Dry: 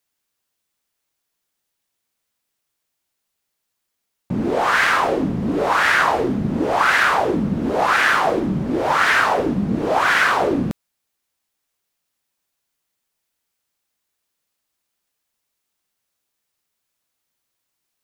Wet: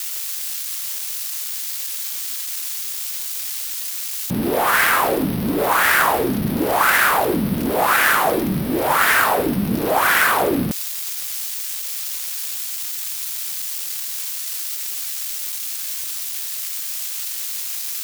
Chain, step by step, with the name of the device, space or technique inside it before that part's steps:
budget class-D amplifier (gap after every zero crossing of 0.057 ms; spike at every zero crossing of −12 dBFS)

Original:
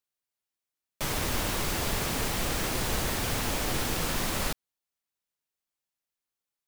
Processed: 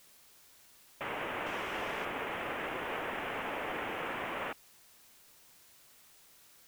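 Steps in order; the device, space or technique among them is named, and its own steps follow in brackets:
army field radio (band-pass filter 390–3,200 Hz; variable-slope delta modulation 16 kbit/s; white noise bed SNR 20 dB)
0:01.46–0:02.05: parametric band 5,500 Hz +8.5 dB 1.1 octaves
level −2 dB

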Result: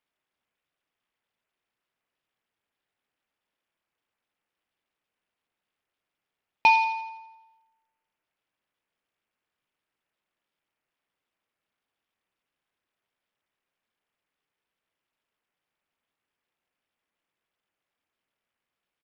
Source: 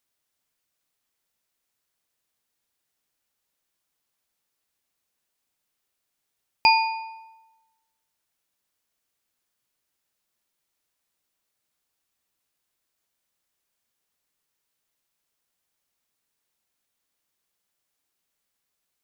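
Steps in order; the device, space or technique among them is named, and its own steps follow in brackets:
Bluetooth headset (high-pass filter 160 Hz 6 dB per octave; downsampling to 8,000 Hz; SBC 64 kbit/s 44,100 Hz)

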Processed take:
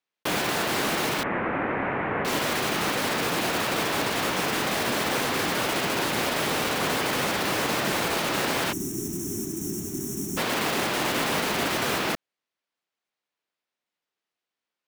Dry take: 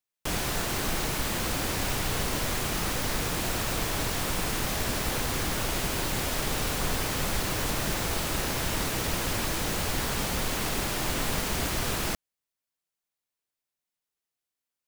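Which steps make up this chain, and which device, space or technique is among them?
early digital voice recorder (band-pass filter 210–3,800 Hz; one scale factor per block 3 bits)
0:01.23–0:02.25: Butterworth low-pass 2,200 Hz 36 dB per octave
0:08.72–0:10.37: gain on a spectral selection 410–5,400 Hz −27 dB
level +6.5 dB

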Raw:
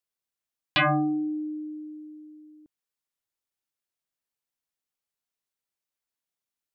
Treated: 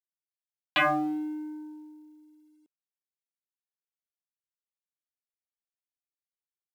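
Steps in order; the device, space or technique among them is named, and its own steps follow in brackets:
phone line with mismatched companding (band-pass filter 300–3,200 Hz; mu-law and A-law mismatch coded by A)

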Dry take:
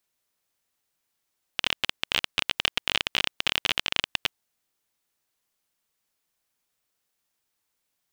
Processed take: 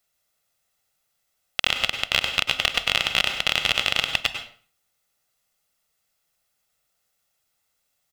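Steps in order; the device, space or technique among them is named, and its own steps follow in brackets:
microphone above a desk (comb filter 1.5 ms, depth 51%; convolution reverb RT60 0.45 s, pre-delay 92 ms, DRR 6.5 dB)
level +3 dB

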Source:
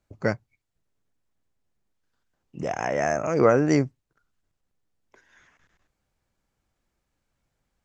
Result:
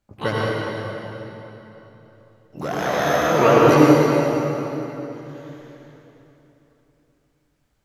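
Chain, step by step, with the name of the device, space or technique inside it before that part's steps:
shimmer-style reverb (pitch-shifted copies added +12 semitones −7 dB; convolution reverb RT60 3.5 s, pre-delay 69 ms, DRR −5.5 dB)

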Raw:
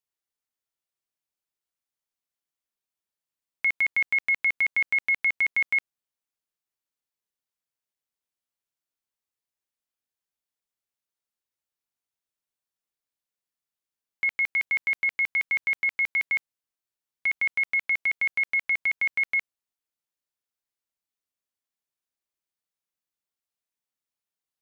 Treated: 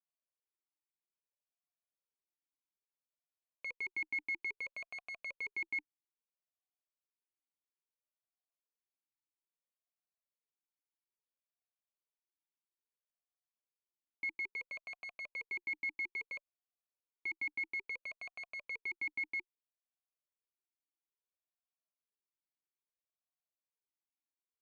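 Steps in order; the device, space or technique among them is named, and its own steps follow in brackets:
talk box (tube saturation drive 24 dB, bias 0.6; formant filter swept between two vowels a-u 0.6 Hz)
level +2.5 dB

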